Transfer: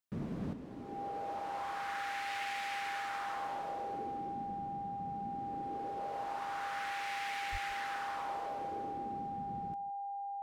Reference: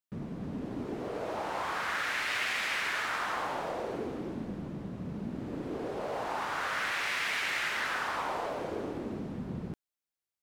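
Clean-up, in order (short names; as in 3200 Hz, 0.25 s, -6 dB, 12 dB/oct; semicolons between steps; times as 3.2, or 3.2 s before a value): notch 800 Hz, Q 30; 7.51–7.63 HPF 140 Hz 24 dB/oct; inverse comb 0.162 s -18 dB; 0.53 gain correction +9.5 dB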